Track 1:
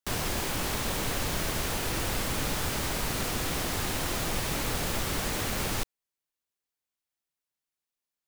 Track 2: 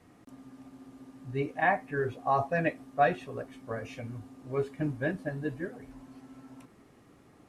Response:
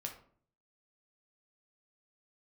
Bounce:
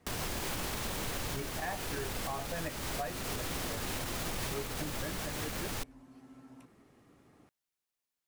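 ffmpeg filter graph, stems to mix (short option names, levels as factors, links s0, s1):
-filter_complex "[0:a]alimiter=limit=0.0708:level=0:latency=1:release=64,volume=1[s0];[1:a]volume=0.631[s1];[s0][s1]amix=inputs=2:normalize=0,alimiter=level_in=1.33:limit=0.0631:level=0:latency=1:release=480,volume=0.75"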